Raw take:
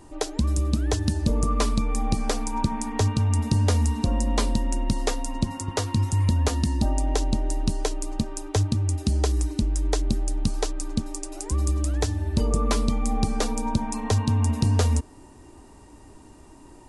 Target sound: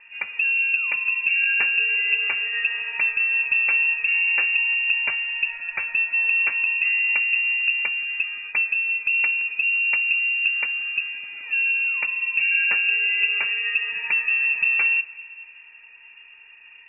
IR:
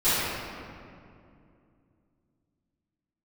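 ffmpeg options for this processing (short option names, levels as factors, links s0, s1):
-filter_complex "[0:a]asuperstop=centerf=650:order=4:qfactor=4.3,asplit=2[s0][s1];[1:a]atrim=start_sample=2205,asetrate=70560,aresample=44100,adelay=18[s2];[s1][s2]afir=irnorm=-1:irlink=0,volume=0.0335[s3];[s0][s3]amix=inputs=2:normalize=0,lowpass=f=2400:t=q:w=0.5098,lowpass=f=2400:t=q:w=0.6013,lowpass=f=2400:t=q:w=0.9,lowpass=f=2400:t=q:w=2.563,afreqshift=-2800"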